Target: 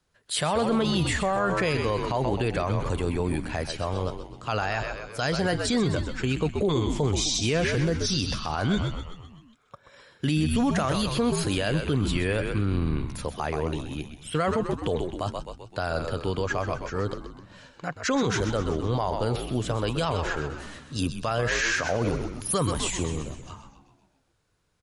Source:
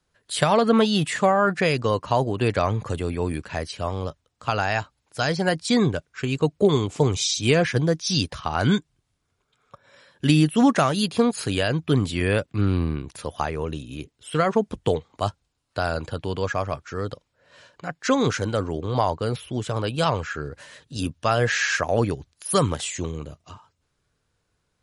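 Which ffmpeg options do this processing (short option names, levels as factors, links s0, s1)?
-filter_complex "[0:a]asplit=7[s0][s1][s2][s3][s4][s5][s6];[s1]adelay=128,afreqshift=-72,volume=0.335[s7];[s2]adelay=256,afreqshift=-144,volume=0.18[s8];[s3]adelay=384,afreqshift=-216,volume=0.0977[s9];[s4]adelay=512,afreqshift=-288,volume=0.0525[s10];[s5]adelay=640,afreqshift=-360,volume=0.0285[s11];[s6]adelay=768,afreqshift=-432,volume=0.0153[s12];[s0][s7][s8][s9][s10][s11][s12]amix=inputs=7:normalize=0,alimiter=limit=0.158:level=0:latency=1:release=33"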